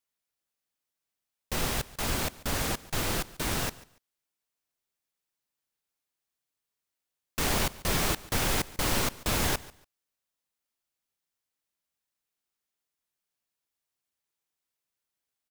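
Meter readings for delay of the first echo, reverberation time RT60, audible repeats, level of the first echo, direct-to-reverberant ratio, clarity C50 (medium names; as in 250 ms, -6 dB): 143 ms, no reverb, 2, -20.0 dB, no reverb, no reverb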